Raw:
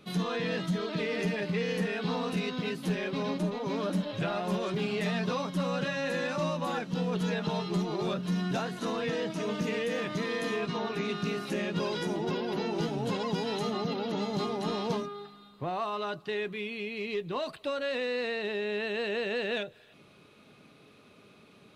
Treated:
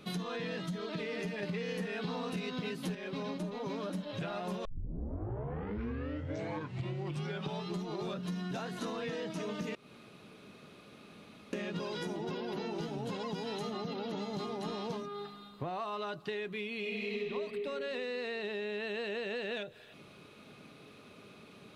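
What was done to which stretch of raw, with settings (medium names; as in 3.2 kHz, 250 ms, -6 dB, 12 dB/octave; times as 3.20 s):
1.43–2.95 s: gain +5.5 dB
4.65 s: tape start 3.04 s
9.75–11.53 s: room tone
16.79–17.24 s: reverb throw, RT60 2.5 s, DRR -7.5 dB
whole clip: compression, threshold -38 dBFS; trim +2.5 dB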